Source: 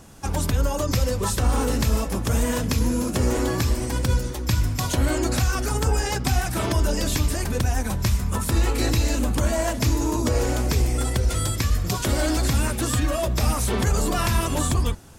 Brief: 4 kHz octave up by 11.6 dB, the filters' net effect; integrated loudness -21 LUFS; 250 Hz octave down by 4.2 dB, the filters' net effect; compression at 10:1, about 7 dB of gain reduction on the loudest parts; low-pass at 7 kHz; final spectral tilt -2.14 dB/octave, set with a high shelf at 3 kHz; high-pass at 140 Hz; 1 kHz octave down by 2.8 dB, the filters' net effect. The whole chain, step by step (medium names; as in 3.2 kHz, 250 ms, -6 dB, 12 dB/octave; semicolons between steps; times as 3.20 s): high-pass 140 Hz; low-pass 7 kHz; peaking EQ 250 Hz -4.5 dB; peaking EQ 1 kHz -5 dB; treble shelf 3 kHz +8.5 dB; peaking EQ 4 kHz +8.5 dB; compression 10:1, threshold -24 dBFS; trim +6 dB